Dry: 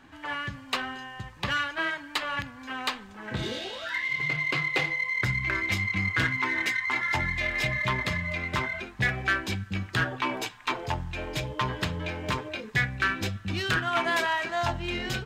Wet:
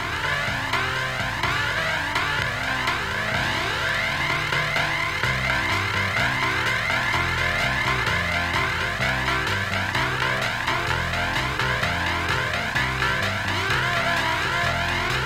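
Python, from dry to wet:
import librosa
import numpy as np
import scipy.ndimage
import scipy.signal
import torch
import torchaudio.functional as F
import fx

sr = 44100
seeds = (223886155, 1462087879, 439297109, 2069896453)

y = fx.bin_compress(x, sr, power=0.2)
y = fx.comb_cascade(y, sr, direction='rising', hz=1.4)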